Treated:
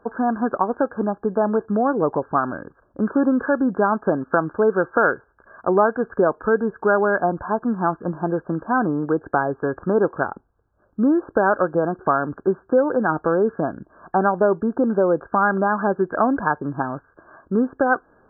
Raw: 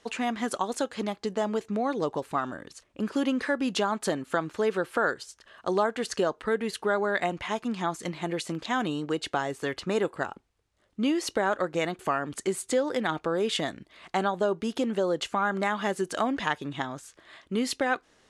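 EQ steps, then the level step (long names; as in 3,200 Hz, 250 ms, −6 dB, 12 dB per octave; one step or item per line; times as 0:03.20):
linear-phase brick-wall low-pass 1,700 Hz
+8.5 dB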